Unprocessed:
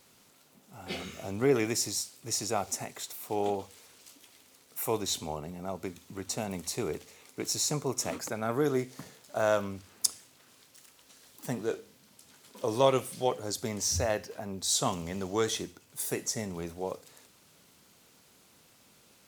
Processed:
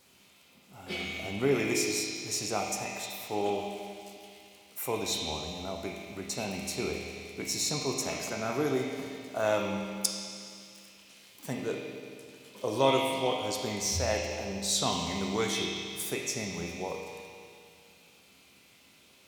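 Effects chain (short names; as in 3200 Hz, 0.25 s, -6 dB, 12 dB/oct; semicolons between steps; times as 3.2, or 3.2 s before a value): on a send: resonant high shelf 1900 Hz +7.5 dB, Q 3 + reverb RT60 2.4 s, pre-delay 5 ms, DRR -5 dB; on the sum: gain -2 dB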